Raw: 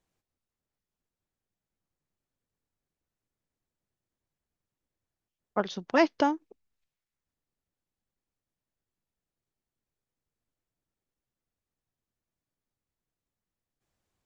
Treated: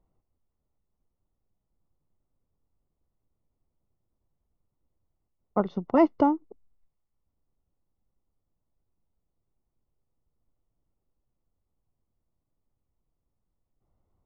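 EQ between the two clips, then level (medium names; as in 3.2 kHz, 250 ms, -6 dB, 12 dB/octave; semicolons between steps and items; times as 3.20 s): dynamic bell 620 Hz, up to -4 dB, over -36 dBFS, Q 0.91; Savitzky-Golay filter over 65 samples; bass shelf 78 Hz +12 dB; +5.5 dB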